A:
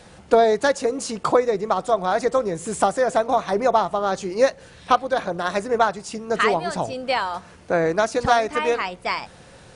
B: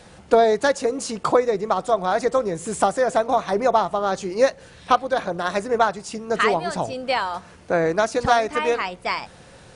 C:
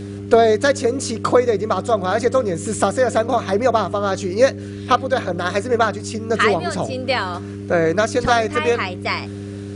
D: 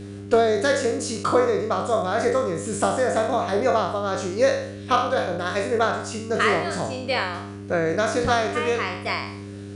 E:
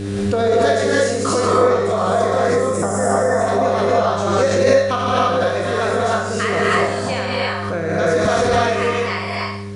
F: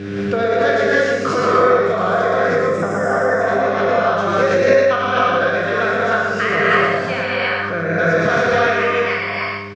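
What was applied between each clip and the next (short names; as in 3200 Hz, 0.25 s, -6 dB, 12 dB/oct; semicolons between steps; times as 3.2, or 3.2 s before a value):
nothing audible
bell 860 Hz -10 dB 0.36 oct; buzz 100 Hz, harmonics 4, -34 dBFS -2 dB/oct; gain +4 dB
spectral trails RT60 0.64 s; gain -6.5 dB
spectral gain 2.54–3.41, 2200–4900 Hz -14 dB; non-linear reverb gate 0.34 s rising, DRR -5.5 dB; backwards sustainer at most 28 dB/s; gain -2.5 dB
speaker cabinet 130–5200 Hz, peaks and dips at 150 Hz +10 dB, 250 Hz -3 dB, 880 Hz -4 dB, 1500 Hz +8 dB, 2300 Hz +5 dB, 4200 Hz -6 dB; echo 0.117 s -4 dB; gain -1 dB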